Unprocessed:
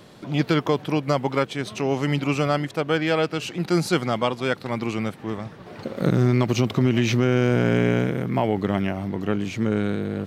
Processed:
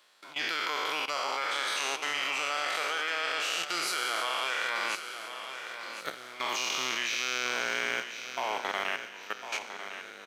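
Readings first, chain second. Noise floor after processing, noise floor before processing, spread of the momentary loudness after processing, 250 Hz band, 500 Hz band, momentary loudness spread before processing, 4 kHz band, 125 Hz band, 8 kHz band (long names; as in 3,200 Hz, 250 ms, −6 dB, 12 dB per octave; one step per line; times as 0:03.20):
−47 dBFS, −44 dBFS, 9 LU, −27.0 dB, −16.0 dB, 8 LU, +2.0 dB, below −35 dB, +3.0 dB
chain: peak hold with a decay on every bin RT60 2.09 s
high-pass filter 1,200 Hz 12 dB per octave
output level in coarse steps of 16 dB
repeating echo 1,053 ms, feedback 39%, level −10 dB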